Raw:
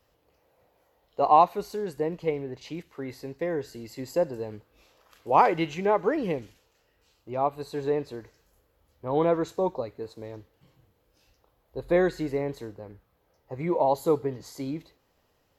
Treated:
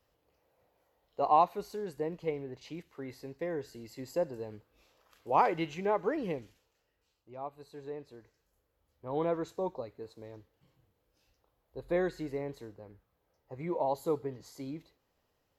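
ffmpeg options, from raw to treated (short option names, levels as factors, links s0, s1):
-af "volume=1.06,afade=t=out:st=6.3:d=1.01:silence=0.375837,afade=t=in:st=7.98:d=1.26:silence=0.446684"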